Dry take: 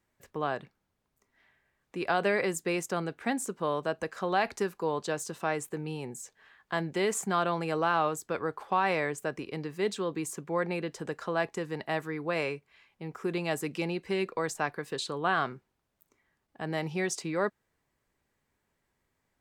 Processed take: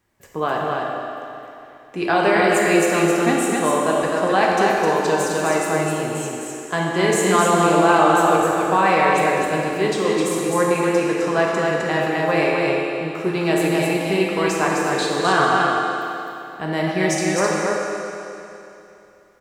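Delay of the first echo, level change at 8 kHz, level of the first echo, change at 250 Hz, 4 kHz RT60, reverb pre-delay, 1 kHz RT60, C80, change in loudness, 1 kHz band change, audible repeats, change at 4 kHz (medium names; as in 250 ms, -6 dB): 259 ms, +12.5 dB, -3.0 dB, +14.0 dB, 2.8 s, 9 ms, 2.9 s, -2.0 dB, +13.0 dB, +14.0 dB, 1, +12.5 dB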